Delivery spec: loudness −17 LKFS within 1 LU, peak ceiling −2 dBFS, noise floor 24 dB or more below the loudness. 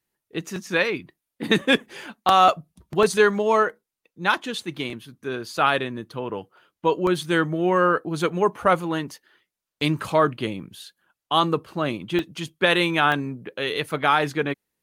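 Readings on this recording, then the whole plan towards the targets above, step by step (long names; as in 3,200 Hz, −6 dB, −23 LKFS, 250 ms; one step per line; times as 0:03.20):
number of dropouts 5; longest dropout 1.3 ms; integrated loudness −23.0 LKFS; sample peak −5.0 dBFS; target loudness −17.0 LKFS
→ repair the gap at 0:03.03/0:04.90/0:07.07/0:12.19/0:13.12, 1.3 ms
level +6 dB
brickwall limiter −2 dBFS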